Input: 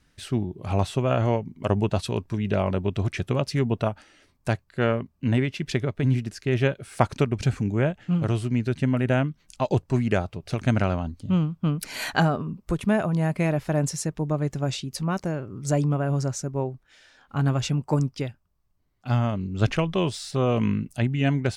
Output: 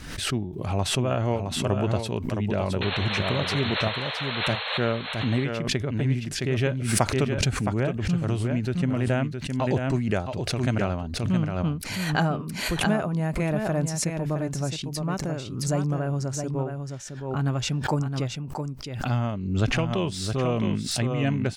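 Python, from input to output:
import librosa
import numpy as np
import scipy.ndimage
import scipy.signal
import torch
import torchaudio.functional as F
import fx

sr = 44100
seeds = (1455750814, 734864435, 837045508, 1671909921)

p1 = fx.spec_paint(x, sr, seeds[0], shape='noise', start_s=2.81, length_s=1.97, low_hz=430.0, high_hz=4300.0, level_db=-30.0)
p2 = p1 + fx.echo_single(p1, sr, ms=666, db=-6.5, dry=0)
p3 = fx.pre_swell(p2, sr, db_per_s=52.0)
y = F.gain(torch.from_numpy(p3), -3.0).numpy()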